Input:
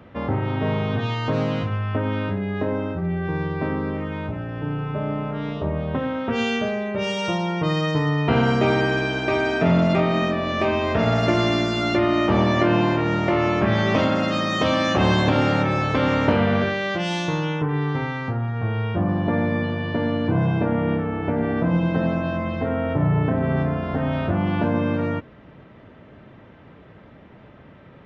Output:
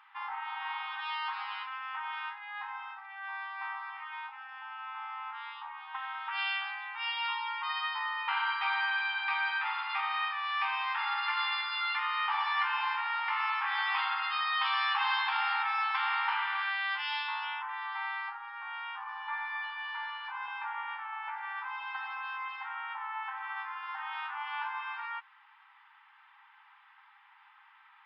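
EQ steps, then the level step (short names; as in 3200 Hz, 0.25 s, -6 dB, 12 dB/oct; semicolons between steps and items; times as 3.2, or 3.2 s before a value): brick-wall FIR band-pass 780–5300 Hz; bell 4200 Hz -5 dB 0.41 oct; -4.0 dB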